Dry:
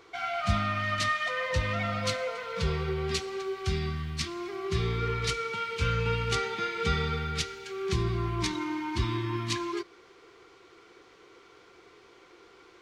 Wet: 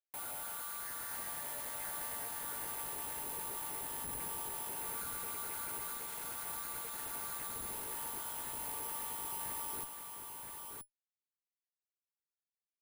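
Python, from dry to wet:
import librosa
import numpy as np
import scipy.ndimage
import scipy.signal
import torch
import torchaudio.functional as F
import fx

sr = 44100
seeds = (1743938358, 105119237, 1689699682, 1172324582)

p1 = fx.chord_vocoder(x, sr, chord='minor triad', root=55)
p2 = scipy.signal.sosfilt(scipy.signal.butter(4, 790.0, 'highpass', fs=sr, output='sos'), p1)
p3 = fx.rider(p2, sr, range_db=4, speed_s=0.5)
p4 = p2 + (p3 * 10.0 ** (-1.5 / 20.0))
p5 = 10.0 ** (-34.0 / 20.0) * np.tanh(p4 / 10.0 ** (-34.0 / 20.0))
p6 = scipy.ndimage.gaussian_filter1d(p5, 4.3, mode='constant')
p7 = fx.schmitt(p6, sr, flips_db=-48.0)
p8 = p7 + fx.echo_single(p7, sr, ms=975, db=-4.5, dry=0)
p9 = (np.kron(scipy.signal.resample_poly(p8, 1, 4), np.eye(4)[0]) * 4)[:len(p8)]
y = p9 * 10.0 ** (-5.5 / 20.0)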